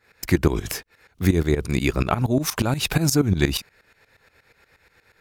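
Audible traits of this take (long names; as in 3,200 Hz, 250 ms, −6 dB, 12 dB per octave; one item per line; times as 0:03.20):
tremolo saw up 8.4 Hz, depth 85%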